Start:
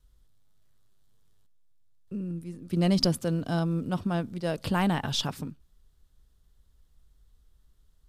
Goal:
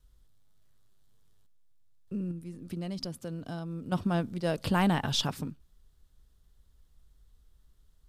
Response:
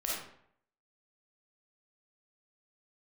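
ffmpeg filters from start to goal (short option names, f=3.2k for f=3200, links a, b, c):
-filter_complex "[0:a]asettb=1/sr,asplit=3[a][b][c];[a]atrim=end=2.314[d];[b]atrim=start=2.31:end=3.92,asetpts=PTS-STARTPTS,afade=t=in:d=0.004:c=qsin,afade=t=out:st=1.606:d=0.004:c=qsin,acompressor=threshold=-38dB:ratio=3[e];[c]atrim=start=3.916[f];[d][e]acrossfade=d=0.004:c1=hsin:c2=qsin[g];[g][f]acrossfade=d=0.004:c1=qsin:c2=hsin"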